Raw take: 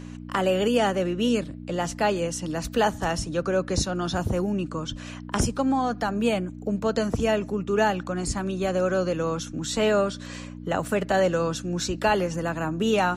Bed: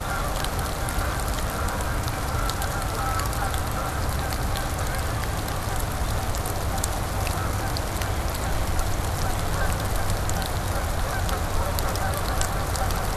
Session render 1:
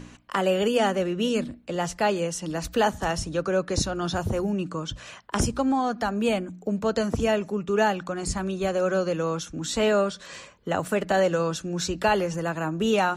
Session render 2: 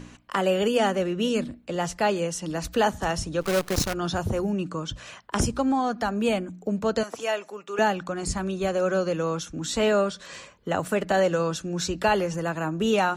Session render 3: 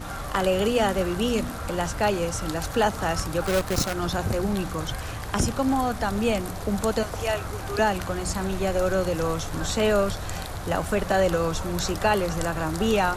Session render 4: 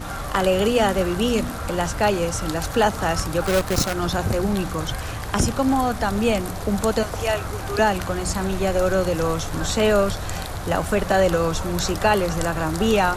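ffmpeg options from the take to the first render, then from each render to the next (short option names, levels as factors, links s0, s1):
-af "bandreject=f=60:t=h:w=4,bandreject=f=120:t=h:w=4,bandreject=f=180:t=h:w=4,bandreject=f=240:t=h:w=4,bandreject=f=300:t=h:w=4"
-filter_complex "[0:a]asettb=1/sr,asplit=3[s0][s1][s2];[s0]atrim=end=3.414[s3];[s1]atrim=start=3.41:end=3.94,asetpts=PTS-STARTPTS,afade=t=in:d=0.004:c=qsin,afade=t=out:st=0.526:d=0.004:c=qsin,acrusher=bits=5:dc=4:mix=0:aa=0.000001[s4];[s2]atrim=start=3.936[s5];[s3][s4]acrossfade=d=0.004:c1=hsin:c2=qsin[s6];[s6][s5]acrossfade=d=0.004:c1=qsin:c2=hsin,asettb=1/sr,asplit=3[s7][s8][s9];[s7]atrim=end=7.034[s10];[s8]atrim=start=7.03:end=7.79,asetpts=PTS-STARTPTS,afade=t=in:d=0.004:c=qsin,afade=t=out:st=0.756:d=0.004:c=qsin,highpass=630[s11];[s9]atrim=start=7.786[s12];[s10][s11]acrossfade=d=0.004:c1=hsin:c2=qsin[s13];[s13][s12]acrossfade=d=0.004:c1=qsin:c2=hsin"
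-filter_complex "[1:a]volume=0.447[s0];[0:a][s0]amix=inputs=2:normalize=0"
-af "volume=1.5"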